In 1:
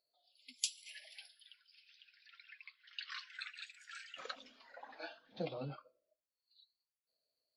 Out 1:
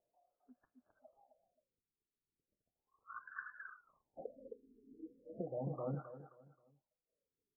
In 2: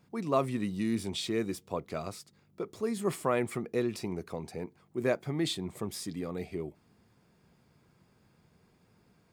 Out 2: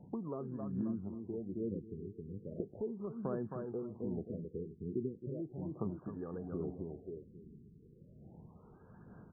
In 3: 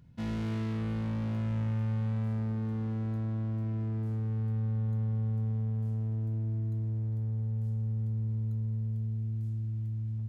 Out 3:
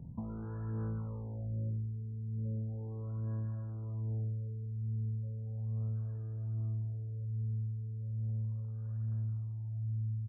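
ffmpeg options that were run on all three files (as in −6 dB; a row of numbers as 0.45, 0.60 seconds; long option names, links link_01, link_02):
-filter_complex "[0:a]equalizer=frequency=200:width_type=o:width=0.67:gain=2.5,asplit=2[link_01][link_02];[link_02]aecho=0:1:265|530|795|1060:0.562|0.152|0.041|0.0111[link_03];[link_01][link_03]amix=inputs=2:normalize=0,acrossover=split=470|3000[link_04][link_05][link_06];[link_05]acompressor=threshold=-43dB:ratio=3[link_07];[link_04][link_07][link_06]amix=inputs=3:normalize=0,asplit=2[link_08][link_09];[link_09]acrusher=bits=5:mode=log:mix=0:aa=0.000001,volume=-6dB[link_10];[link_08][link_10]amix=inputs=2:normalize=0,acompressor=threshold=-39dB:ratio=12,aphaser=in_gain=1:out_gain=1:delay=2.5:decay=0.38:speed=1.2:type=sinusoidal,afftfilt=real='re*lt(b*sr/1024,440*pow(1800/440,0.5+0.5*sin(2*PI*0.36*pts/sr)))':imag='im*lt(b*sr/1024,440*pow(1800/440,0.5+0.5*sin(2*PI*0.36*pts/sr)))':win_size=1024:overlap=0.75,volume=1.5dB"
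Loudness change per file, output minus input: −1.0, −8.0, −5.5 LU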